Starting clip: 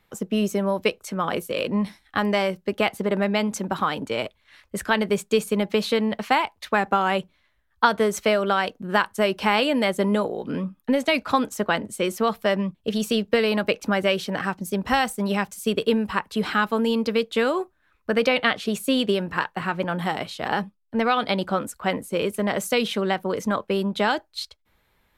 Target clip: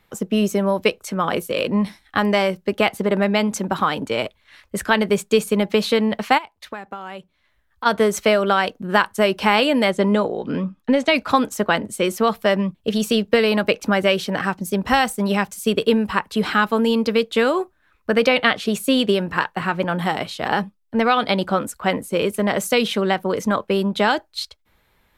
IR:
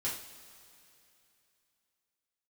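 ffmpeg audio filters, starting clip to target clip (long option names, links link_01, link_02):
-filter_complex "[0:a]asplit=3[link_01][link_02][link_03];[link_01]afade=type=out:start_time=6.37:duration=0.02[link_04];[link_02]acompressor=threshold=-39dB:ratio=3,afade=type=in:start_time=6.37:duration=0.02,afade=type=out:start_time=7.85:duration=0.02[link_05];[link_03]afade=type=in:start_time=7.85:duration=0.02[link_06];[link_04][link_05][link_06]amix=inputs=3:normalize=0,asettb=1/sr,asplit=3[link_07][link_08][link_09];[link_07]atrim=end=9.914[link_10];[link_08]atrim=start=9.91:end=11.16,asetpts=PTS-STARTPTS,afade=type=in:duration=0.004:curve=qsin,afade=type=out:start_time=1.246:duration=0.004:curve=qsin,lowpass=6900[link_11];[link_09]atrim=start=11.156[link_12];[link_10][link_11]acrossfade=duration=0.004:curve1=hsin:curve2=qsin[link_13];[link_13][link_12]acrossfade=duration=0.004:curve1=qsin:curve2=hsin,volume=4dB"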